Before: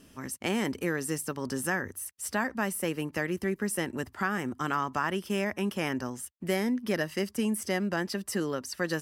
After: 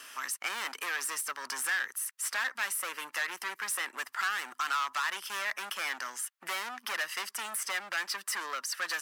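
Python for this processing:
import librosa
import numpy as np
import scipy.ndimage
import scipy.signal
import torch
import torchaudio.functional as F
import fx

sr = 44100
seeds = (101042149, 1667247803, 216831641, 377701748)

y = np.clip(x, -10.0 ** (-31.5 / 20.0), 10.0 ** (-31.5 / 20.0))
y = fx.highpass_res(y, sr, hz=1300.0, q=1.6)
y = fx.band_squash(y, sr, depth_pct=40)
y = y * librosa.db_to_amplitude(4.0)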